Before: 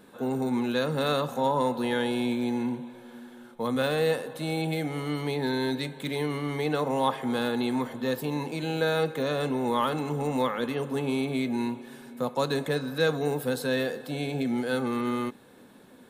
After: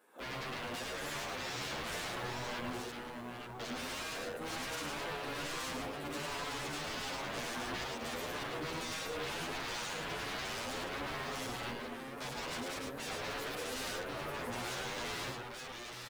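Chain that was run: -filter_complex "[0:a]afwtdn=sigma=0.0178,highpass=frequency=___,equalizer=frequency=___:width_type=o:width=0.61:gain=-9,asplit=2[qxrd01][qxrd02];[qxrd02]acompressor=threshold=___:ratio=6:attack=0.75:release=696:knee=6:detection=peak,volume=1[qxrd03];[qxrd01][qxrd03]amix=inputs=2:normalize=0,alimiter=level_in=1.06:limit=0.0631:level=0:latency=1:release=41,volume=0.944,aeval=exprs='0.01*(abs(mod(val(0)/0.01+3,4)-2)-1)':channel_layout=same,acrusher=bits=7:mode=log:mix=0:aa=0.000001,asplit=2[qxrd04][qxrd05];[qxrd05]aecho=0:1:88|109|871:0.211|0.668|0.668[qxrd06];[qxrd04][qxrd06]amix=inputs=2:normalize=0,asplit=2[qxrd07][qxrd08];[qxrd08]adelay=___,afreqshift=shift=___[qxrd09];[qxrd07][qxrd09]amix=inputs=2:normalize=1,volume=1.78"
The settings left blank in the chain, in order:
550, 3900, 0.00794, 9.8, 1.6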